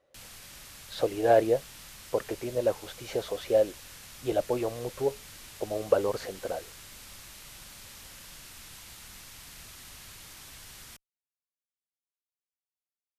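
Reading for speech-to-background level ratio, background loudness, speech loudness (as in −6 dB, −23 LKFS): 16.0 dB, −45.5 LKFS, −29.5 LKFS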